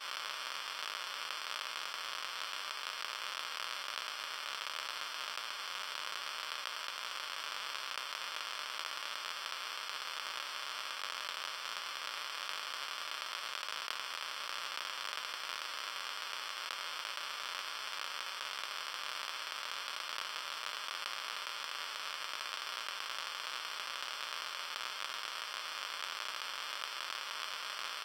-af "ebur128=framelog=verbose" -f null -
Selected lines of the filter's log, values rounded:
Integrated loudness:
  I:         -39.5 LUFS
  Threshold: -49.5 LUFS
Loudness range:
  LRA:         0.2 LU
  Threshold: -59.5 LUFS
  LRA low:   -39.6 LUFS
  LRA high:  -39.4 LUFS